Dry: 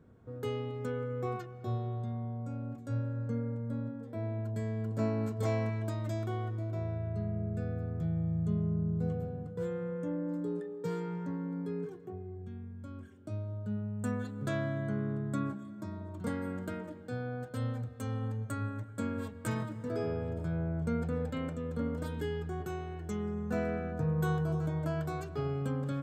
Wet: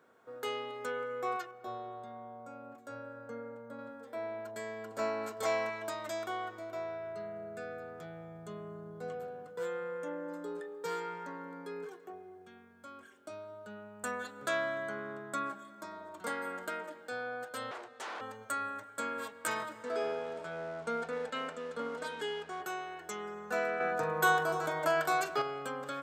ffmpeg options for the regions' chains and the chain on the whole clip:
-filter_complex "[0:a]asettb=1/sr,asplit=3[s0][s1][s2];[s0]atrim=end=1.514[s3];[s1]atrim=start=1.51:end=3.79,asetpts=PTS-STARTPTS,afade=t=in:d=0.004:c=qsin,afade=t=out:st=2.276:d=0.004:c=qsin,lowpass=f=1200:p=1,aemphasis=mode=production:type=50fm[s4];[s2]atrim=start=3.786[s5];[s3][s4]acrossfade=d=0.004:c1=hsin:c2=qsin[s6];[s6][s5]acrossfade=d=0.004:c1=qsin:c2=hsin,asettb=1/sr,asplit=3[s7][s8][s9];[s7]atrim=end=17.714[s10];[s8]atrim=start=17.71:end=18.21,asetpts=PTS-STARTPTS,afade=t=in:d=0.004:c=qsin,afade=t=out:st=0.496:d=0.004:c=qsin,aeval=exprs='0.0112*(abs(mod(val(0)/0.0112+3,4)-2)-1)':c=same,highpass=160,lowpass=7900[s11];[s9]atrim=start=18.206[s12];[s10][s11]acrossfade=d=0.004:c1=hsin:c2=qsin[s13];[s13][s12]acrossfade=d=0.004:c1=qsin:c2=hsin,asettb=1/sr,asplit=3[s14][s15][s16];[s14]atrim=end=19.834[s17];[s15]atrim=start=19.83:end=22.61,asetpts=PTS-STARTPTS,afade=t=in:d=0.004:c=qsin,afade=t=out:st=2.776:d=0.004:c=qsin,aecho=1:1:4.5:0.36,atrim=end_sample=122598,aeval=exprs='sgn(val(0))*max(abs(val(0))-0.00126,0)':c=same,lowpass=7900[s18];[s16]atrim=start=22.606[s19];[s17][s18]acrossfade=d=0.004:c1=hsin:c2=qsin[s20];[s20][s19]acrossfade=d=0.004:c1=qsin:c2=hsin,asettb=1/sr,asplit=3[s21][s22][s23];[s21]atrim=end=23.804[s24];[s22]atrim=start=23.8:end=25.42,asetpts=PTS-STARTPTS,afade=t=in:d=0.004:c=qsin,afade=t=out:st=1.616:d=0.004:c=qsin,acontrast=53,asplit=2[s25][s26];[s26]adelay=42,volume=0.224[s27];[s25][s27]amix=inputs=2:normalize=0,atrim=end_sample=71442[s28];[s23]atrim=start=25.416[s29];[s24][s28]acrossfade=d=0.004:c1=hsin:c2=qsin[s30];[s30][s29]acrossfade=d=0.004:c1=qsin:c2=hsin,highpass=710,equalizer=f=1400:w=6.9:g=2,volume=2.24"

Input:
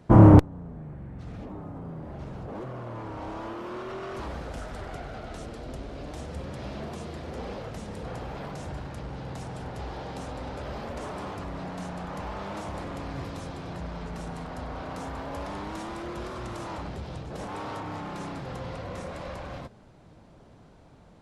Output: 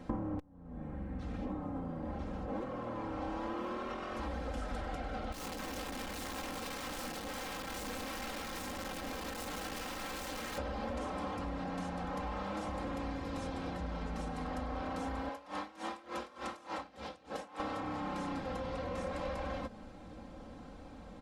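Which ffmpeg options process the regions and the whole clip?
-filter_complex "[0:a]asettb=1/sr,asplit=3[s0][s1][s2];[s0]atrim=end=5.324[s3];[s1]atrim=start=5.32:end=10.58,asetpts=PTS-STARTPTS,afade=t=in:d=0.004:c=qsin,afade=t=out:st=5.256:d=0.004:c=qsin,equalizer=f=1200:w=0.38:g=-6.5,flanger=delay=18:depth=6.5:speed=2.7,aeval=exprs='(mod(100*val(0)+1,2)-1)/100':c=same[s4];[s2]atrim=start=10.576[s5];[s3][s4]acrossfade=d=0.004:c1=hsin:c2=qsin[s6];[s6][s5]acrossfade=d=0.004:c1=qsin:c2=hsin,asettb=1/sr,asplit=3[s7][s8][s9];[s7]atrim=end=15.294[s10];[s8]atrim=start=15.29:end=17.6,asetpts=PTS-STARTPTS,afade=t=in:d=0.004:c=qsin,afade=t=out:st=2.306:d=0.004:c=qsin,highpass=f=550:p=1,aeval=exprs='val(0)*pow(10,-22*(0.5-0.5*cos(2*PI*3.4*n/s))/20)':c=same[s11];[s9]atrim=start=17.596[s12];[s10][s11]acrossfade=d=0.004:c1=hsin:c2=qsin[s13];[s13][s12]acrossfade=d=0.004:c1=qsin:c2=hsin,acompressor=threshold=0.0112:ratio=12,highshelf=f=5500:g=-4.5,aecho=1:1:3.8:0.75,volume=1.33"

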